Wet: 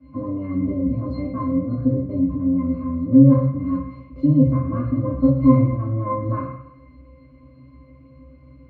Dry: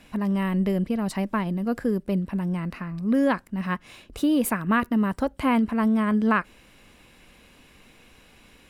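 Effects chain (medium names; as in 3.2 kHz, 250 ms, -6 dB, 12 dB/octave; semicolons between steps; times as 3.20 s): octave divider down 1 oct, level +4 dB; high-pass 200 Hz 6 dB/octave; in parallel at -2 dB: compression, threshold -29 dBFS, peak gain reduction 12.5 dB; on the sum: pitch-class resonator C, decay 0.27 s; reverberation RT60 0.75 s, pre-delay 3 ms, DRR -8.5 dB; trim -5 dB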